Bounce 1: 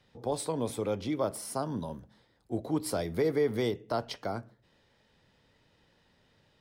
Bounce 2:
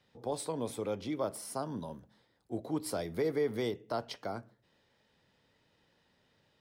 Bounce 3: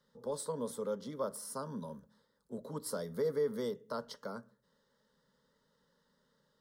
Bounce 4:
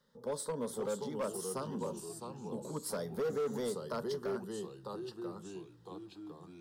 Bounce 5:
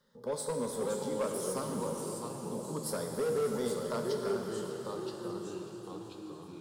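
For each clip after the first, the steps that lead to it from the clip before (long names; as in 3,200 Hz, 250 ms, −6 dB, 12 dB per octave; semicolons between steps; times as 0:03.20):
low-shelf EQ 73 Hz −9.5 dB; level −3.5 dB
phaser with its sweep stopped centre 490 Hz, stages 8
delay with pitch and tempo change per echo 469 ms, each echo −2 semitones, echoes 3, each echo −6 dB; gain into a clipping stage and back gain 31.5 dB; level +1 dB
delay with a high-pass on its return 595 ms, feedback 64%, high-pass 4,500 Hz, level −14 dB; dense smooth reverb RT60 4.4 s, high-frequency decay 1×, DRR 2 dB; level +1.5 dB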